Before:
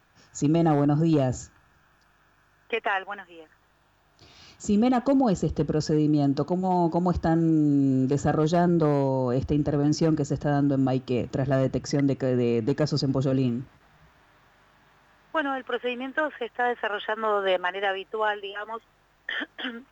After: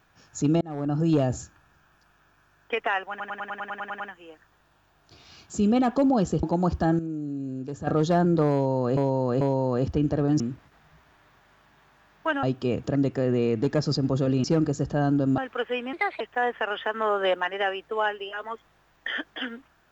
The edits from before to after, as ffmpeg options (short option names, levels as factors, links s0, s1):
-filter_complex "[0:a]asplit=23[s0][s1][s2][s3][s4][s5][s6][s7][s8][s9][s10][s11][s12][s13][s14][s15][s16][s17][s18][s19][s20][s21][s22];[s0]atrim=end=0.61,asetpts=PTS-STARTPTS,afade=t=out:st=0.606:d=0.004:c=hsin[s23];[s1]atrim=start=0.61:end=3.202,asetpts=PTS-STARTPTS,afade=t=in:d=0.49[s24];[s2]atrim=start=3.098:end=3.202[s25];[s3]atrim=start=3.098:end=3.202[s26];[s4]atrim=start=3.098:end=3.202[s27];[s5]atrim=start=3.098:end=3.202[s28];[s6]atrim=start=3.098:end=3.202[s29];[s7]atrim=start=3.098:end=3.202[s30];[s8]atrim=start=3.098:end=3.202[s31];[s9]atrim=start=3.098:end=3.202[s32];[s10]atrim=start=3.098:end=5.532[s33];[s11]atrim=start=6.858:end=7.422[s34];[s12]atrim=start=7.418:end=8.302,asetpts=PTS-STARTPTS,volume=0.299[s35];[s13]atrim=start=8.298:end=9.402[s36];[s14]atrim=start=8.958:end=9.402[s37];[s15]atrim=start=8.958:end=9.952[s38];[s16]atrim=start=13.488:end=15.522[s39];[s17]atrim=start=10.888:end=11.412[s40];[s18]atrim=start=11.998:end=13.492[s41];[s19]atrim=start=9.948:end=10.892[s42];[s20]atrim=start=15.518:end=16.074[s43];[s21]atrim=start=16.07:end=16.43,asetpts=PTS-STARTPTS,asetrate=57771,aresample=44100,atrim=end_sample=12119,asetpts=PTS-STARTPTS[s44];[s22]atrim=start=16.426[s45];[s23][s24]concat=n=2:v=0:a=1[s46];[s46][s25]acrossfade=d=0.004:c1=hsin:c2=hsin[s47];[s47][s26]acrossfade=d=0.004:c1=hsin:c2=hsin[s48];[s48][s27]acrossfade=d=0.004:c1=hsin:c2=hsin[s49];[s49][s28]acrossfade=d=0.004:c1=hsin:c2=hsin[s50];[s50][s29]acrossfade=d=0.004:c1=hsin:c2=hsin[s51];[s51][s30]acrossfade=d=0.004:c1=hsin:c2=hsin[s52];[s52][s31]acrossfade=d=0.004:c1=hsin:c2=hsin[s53];[s53][s32]acrossfade=d=0.004:c1=hsin:c2=hsin[s54];[s54][s33]acrossfade=d=0.004:c1=hsin:c2=hsin[s55];[s55][s34]acrossfade=d=0.004:c1=hsin:c2=hsin[s56];[s56][s35]acrossfade=d=0.004:c1=hsin:c2=hsin[s57];[s57][s36]acrossfade=d=0.004:c1=hsin:c2=hsin[s58];[s58][s37]acrossfade=d=0.004:c1=hsin:c2=hsin[s59];[s59][s38]acrossfade=d=0.004:c1=hsin:c2=hsin[s60];[s60][s39]acrossfade=d=0.004:c1=hsin:c2=hsin[s61];[s61][s40]acrossfade=d=0.004:c1=hsin:c2=hsin[s62];[s62][s41]acrossfade=d=0.004:c1=hsin:c2=hsin[s63];[s63][s42]acrossfade=d=0.004:c1=hsin:c2=hsin[s64];[s64][s43]acrossfade=d=0.004:c1=hsin:c2=hsin[s65];[s65][s44]acrossfade=d=0.004:c1=hsin:c2=hsin[s66];[s66][s45]acrossfade=d=0.004:c1=hsin:c2=hsin"